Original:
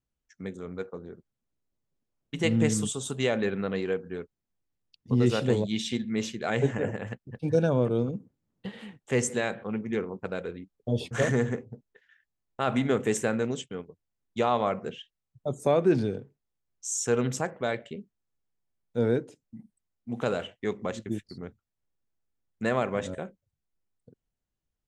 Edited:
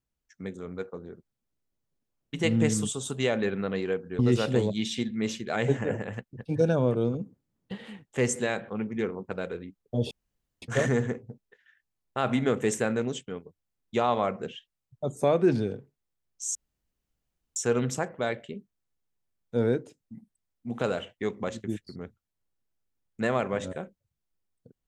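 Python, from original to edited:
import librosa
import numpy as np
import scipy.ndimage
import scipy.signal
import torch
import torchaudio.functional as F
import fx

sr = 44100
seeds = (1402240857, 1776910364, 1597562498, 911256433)

y = fx.edit(x, sr, fx.cut(start_s=4.19, length_s=0.94),
    fx.insert_room_tone(at_s=11.05, length_s=0.51),
    fx.insert_room_tone(at_s=16.98, length_s=1.01), tone=tone)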